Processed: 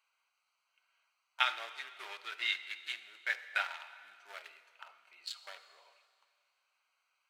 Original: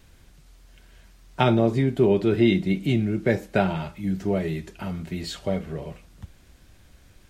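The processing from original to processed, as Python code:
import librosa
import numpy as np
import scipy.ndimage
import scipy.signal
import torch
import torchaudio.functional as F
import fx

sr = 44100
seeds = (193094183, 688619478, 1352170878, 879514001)

y = fx.wiener(x, sr, points=25)
y = scipy.signal.sosfilt(scipy.signal.butter(4, 1300.0, 'highpass', fs=sr, output='sos'), y)
y = fx.rev_plate(y, sr, seeds[0], rt60_s=2.2, hf_ratio=1.0, predelay_ms=0, drr_db=11.5)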